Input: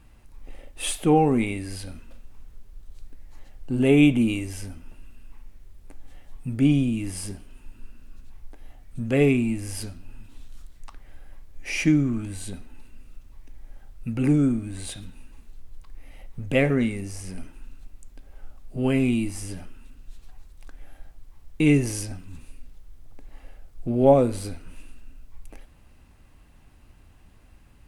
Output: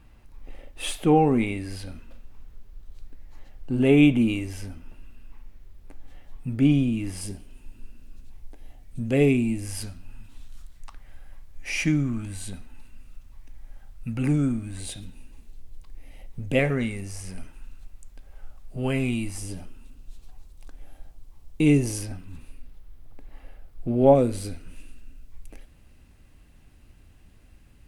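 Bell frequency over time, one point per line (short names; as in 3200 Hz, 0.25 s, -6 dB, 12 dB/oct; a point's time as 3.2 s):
bell -6 dB 1.1 oct
9100 Hz
from 7.21 s 1300 Hz
from 9.65 s 370 Hz
from 14.8 s 1300 Hz
from 16.59 s 290 Hz
from 19.38 s 1700 Hz
from 21.98 s 7200 Hz
from 24.15 s 970 Hz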